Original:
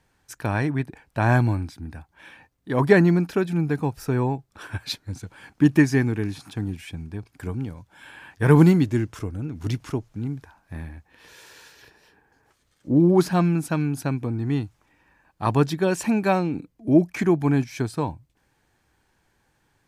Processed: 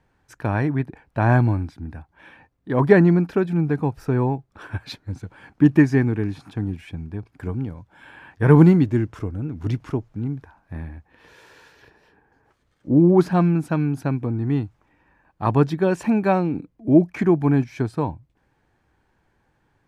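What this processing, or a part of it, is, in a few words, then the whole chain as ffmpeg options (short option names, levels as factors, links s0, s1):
through cloth: -af "highshelf=f=3400:g=-15,volume=1.33"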